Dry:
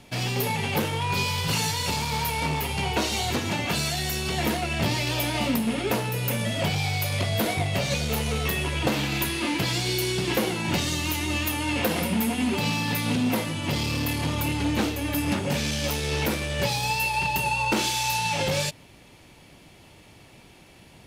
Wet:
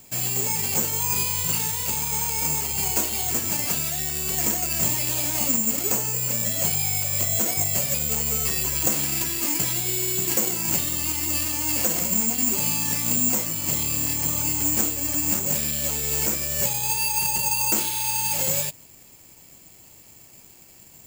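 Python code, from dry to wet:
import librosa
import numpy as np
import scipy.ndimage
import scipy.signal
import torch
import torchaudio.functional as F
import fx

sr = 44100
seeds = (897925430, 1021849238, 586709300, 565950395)

y = (np.kron(scipy.signal.resample_poly(x, 1, 6), np.eye(6)[0]) * 6)[:len(x)]
y = y * 10.0 ** (-5.5 / 20.0)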